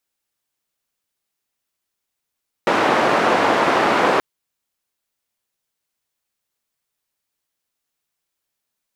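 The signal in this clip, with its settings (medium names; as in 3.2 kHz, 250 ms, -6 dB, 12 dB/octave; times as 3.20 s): noise band 280–1100 Hz, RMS -16.5 dBFS 1.53 s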